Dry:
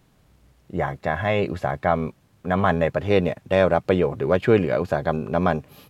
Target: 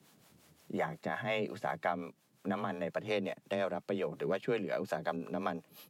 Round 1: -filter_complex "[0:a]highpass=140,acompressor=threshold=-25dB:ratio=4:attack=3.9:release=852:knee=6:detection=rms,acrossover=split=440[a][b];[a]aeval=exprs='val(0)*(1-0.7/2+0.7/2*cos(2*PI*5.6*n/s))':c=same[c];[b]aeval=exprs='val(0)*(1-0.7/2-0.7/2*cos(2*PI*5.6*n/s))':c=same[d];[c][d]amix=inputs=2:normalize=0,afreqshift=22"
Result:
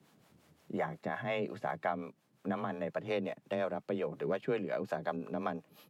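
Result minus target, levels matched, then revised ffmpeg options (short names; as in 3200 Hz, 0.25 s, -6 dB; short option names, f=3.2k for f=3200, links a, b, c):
8000 Hz band -6.5 dB
-filter_complex "[0:a]highpass=140,acompressor=threshold=-25dB:ratio=4:attack=3.9:release=852:knee=6:detection=rms,highshelf=f=3.3k:g=8.5,acrossover=split=440[a][b];[a]aeval=exprs='val(0)*(1-0.7/2+0.7/2*cos(2*PI*5.6*n/s))':c=same[c];[b]aeval=exprs='val(0)*(1-0.7/2-0.7/2*cos(2*PI*5.6*n/s))':c=same[d];[c][d]amix=inputs=2:normalize=0,afreqshift=22"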